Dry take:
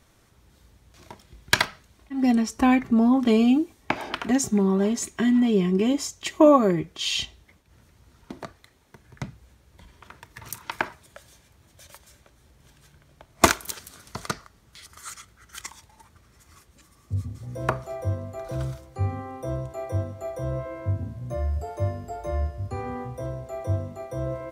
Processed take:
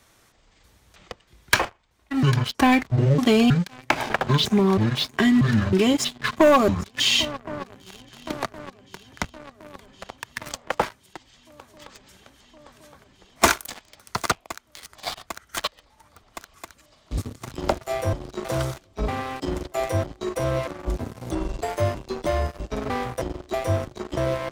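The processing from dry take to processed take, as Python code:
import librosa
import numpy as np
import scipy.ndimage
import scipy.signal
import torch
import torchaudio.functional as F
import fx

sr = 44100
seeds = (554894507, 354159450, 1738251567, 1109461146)

y = fx.pitch_trill(x, sr, semitones=-10.5, every_ms=318)
y = fx.low_shelf(y, sr, hz=380.0, db=-8.5)
y = fx.echo_swing(y, sr, ms=1066, ratio=3, feedback_pct=70, wet_db=-24.0)
y = fx.leveller(y, sr, passes=3)
y = fx.band_squash(y, sr, depth_pct=40)
y = F.gain(torch.from_numpy(y), -1.5).numpy()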